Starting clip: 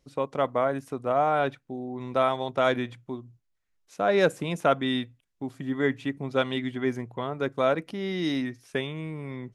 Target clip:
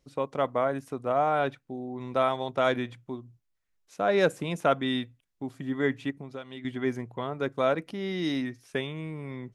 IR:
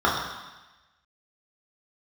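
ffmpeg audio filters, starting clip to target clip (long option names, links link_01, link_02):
-filter_complex "[0:a]asettb=1/sr,asplit=3[link_01][link_02][link_03];[link_01]atrim=end=6.104[link_04];[link_02]atrim=start=6.1:end=6.65,asetpts=PTS-STARTPTS,afade=type=in:duration=0.004:curve=qsin,afade=type=out:start_time=0.546:duration=0.004:curve=qsin,acompressor=threshold=-36dB:ratio=6[link_05];[link_03]atrim=start=6.646[link_06];[link_04][link_05]acrossfade=duration=0.004:curve1=hsin:curve2=qsin[link_07];[link_07][link_06]acrossfade=duration=0.004:curve1=qsin:curve2=hsin,volume=-1.5dB"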